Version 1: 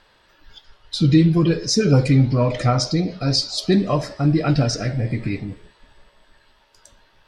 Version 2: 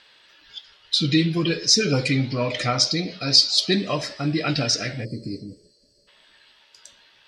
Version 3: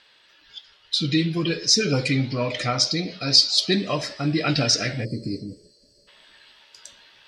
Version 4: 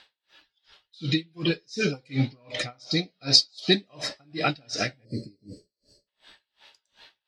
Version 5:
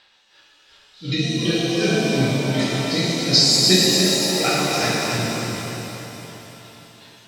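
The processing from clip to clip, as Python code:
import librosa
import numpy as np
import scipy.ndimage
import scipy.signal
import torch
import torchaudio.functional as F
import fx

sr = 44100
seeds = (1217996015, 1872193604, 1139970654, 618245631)

y1 = fx.spec_box(x, sr, start_s=5.04, length_s=1.04, low_hz=640.0, high_hz=4100.0, gain_db=-29)
y1 = fx.weighting(y1, sr, curve='D')
y1 = y1 * 10.0 ** (-4.0 / 20.0)
y2 = fx.rider(y1, sr, range_db=4, speed_s=2.0)
y2 = y2 * 10.0 ** (-1.0 / 20.0)
y3 = fx.small_body(y2, sr, hz=(780.0, 3800.0), ring_ms=20, db=6)
y3 = y3 * 10.0 ** (-37 * (0.5 - 0.5 * np.cos(2.0 * np.pi * 2.7 * np.arange(len(y3)) / sr)) / 20.0)
y3 = y3 * 10.0 ** (1.5 / 20.0)
y4 = fx.echo_feedback(y3, sr, ms=291, feedback_pct=56, wet_db=-7.5)
y4 = fx.rev_shimmer(y4, sr, seeds[0], rt60_s=2.8, semitones=7, shimmer_db=-8, drr_db=-7.5)
y4 = y4 * 10.0 ** (-1.5 / 20.0)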